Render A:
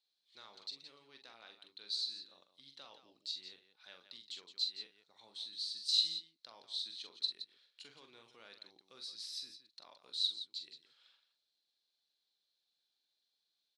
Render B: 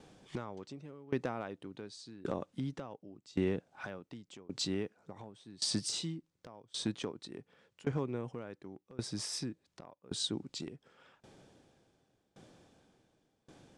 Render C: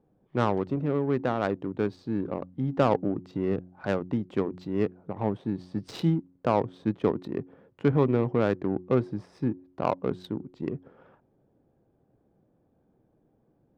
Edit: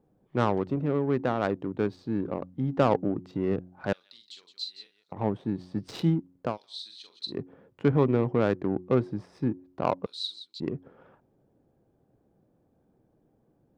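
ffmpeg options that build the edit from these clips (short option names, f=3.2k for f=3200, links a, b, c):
-filter_complex "[0:a]asplit=3[a][b][c];[2:a]asplit=4[d][e][f][g];[d]atrim=end=3.932[h];[a]atrim=start=3.928:end=5.122[i];[e]atrim=start=5.118:end=6.58[j];[b]atrim=start=6.42:end=7.41[k];[f]atrim=start=7.25:end=10.062[l];[c]atrim=start=10.058:end=10.602[m];[g]atrim=start=10.598[n];[h][i]acrossfade=d=0.004:c1=hsin:c2=hsin[o];[o][j]acrossfade=d=0.004:c1=hsin:c2=hsin[p];[p][k]acrossfade=d=0.16:c1=tri:c2=tri[q];[q][l]acrossfade=d=0.16:c1=tri:c2=tri[r];[r][m]acrossfade=d=0.004:c1=hsin:c2=hsin[s];[s][n]acrossfade=d=0.004:c1=hsin:c2=hsin"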